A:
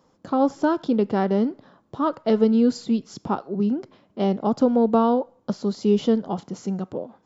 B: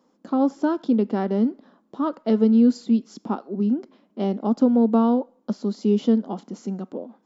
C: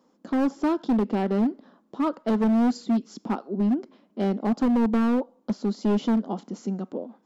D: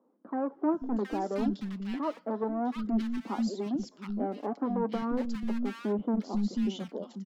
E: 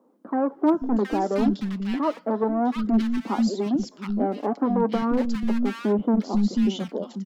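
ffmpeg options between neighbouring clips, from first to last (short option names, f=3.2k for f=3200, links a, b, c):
-af "lowshelf=f=160:t=q:w=3:g=-12,volume=-4.5dB"
-af "asoftclip=type=hard:threshold=-18.5dB"
-filter_complex "[0:a]flanger=delay=0.3:depth=6.7:regen=41:speed=0.33:shape=sinusoidal,acrossover=split=230|1500[a][b][c];[a]adelay=490[d];[c]adelay=720[e];[d][b][e]amix=inputs=3:normalize=0"
-af "asoftclip=type=hard:threshold=-20.5dB,volume=8dB"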